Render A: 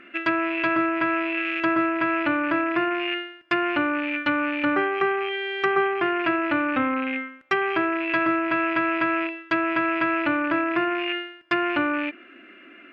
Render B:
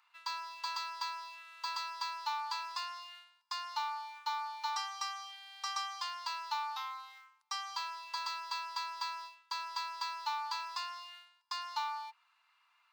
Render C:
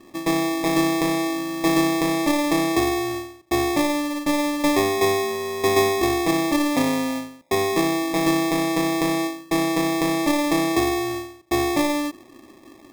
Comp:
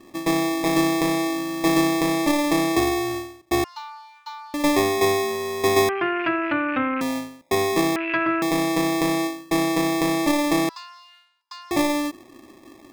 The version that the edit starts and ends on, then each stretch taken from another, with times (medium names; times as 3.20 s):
C
3.64–4.54 s: from B
5.89–7.01 s: from A
7.96–8.42 s: from A
10.69–11.71 s: from B